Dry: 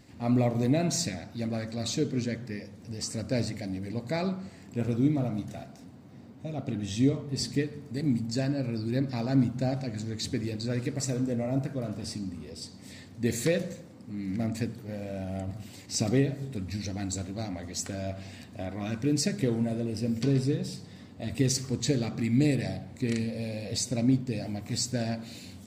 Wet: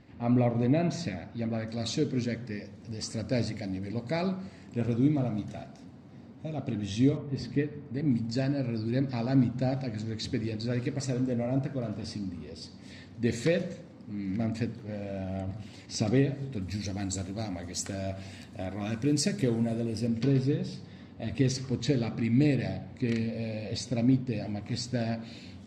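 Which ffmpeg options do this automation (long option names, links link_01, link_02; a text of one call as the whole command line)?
ffmpeg -i in.wav -af "asetnsamples=nb_out_samples=441:pad=0,asendcmd='1.68 lowpass f 6100;7.17 lowpass f 2500;8.11 lowpass f 5000;16.62 lowpass f 11000;20.07 lowpass f 4200',lowpass=3000" out.wav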